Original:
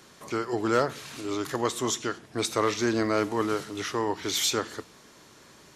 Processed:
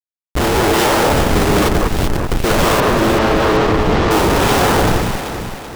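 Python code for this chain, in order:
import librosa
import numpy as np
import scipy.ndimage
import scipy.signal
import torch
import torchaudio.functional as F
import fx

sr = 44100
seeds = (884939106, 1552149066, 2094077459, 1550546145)

p1 = fx.spec_trails(x, sr, decay_s=1.14)
p2 = fx.highpass(p1, sr, hz=620.0, slope=6)
p3 = fx.rider(p2, sr, range_db=5, speed_s=2.0)
p4 = p2 + (p3 * librosa.db_to_amplitude(1.0))
p5 = fx.sample_hold(p4, sr, seeds[0], rate_hz=2200.0, jitter_pct=0)
p6 = fx.dispersion(p5, sr, late='lows', ms=90.0, hz=2600.0)
p7 = fx.quant_companded(p6, sr, bits=2, at=(1.67, 2.3), fade=0.02)
p8 = fx.schmitt(p7, sr, flips_db=-23.0)
p9 = fx.air_absorb(p8, sr, metres=140.0, at=(2.8, 4.11))
p10 = p9 + fx.echo_alternate(p9, sr, ms=192, hz=2000.0, feedback_pct=68, wet_db=-3.0, dry=0)
y = p10 * librosa.db_to_amplitude(7.0)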